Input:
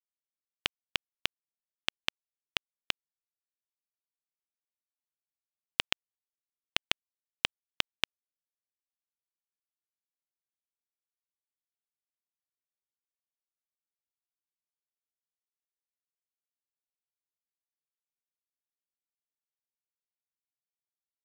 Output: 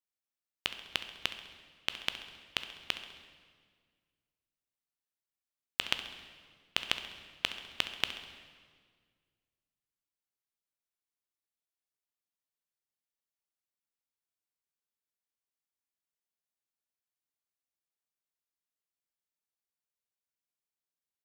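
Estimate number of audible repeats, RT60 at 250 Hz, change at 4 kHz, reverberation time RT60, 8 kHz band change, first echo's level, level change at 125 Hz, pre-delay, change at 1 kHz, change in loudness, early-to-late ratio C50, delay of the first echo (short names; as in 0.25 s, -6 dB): 3, 2.1 s, -1.0 dB, 1.8 s, -1.0 dB, -14.5 dB, -0.5 dB, 10 ms, -0.5 dB, -1.0 dB, 8.5 dB, 67 ms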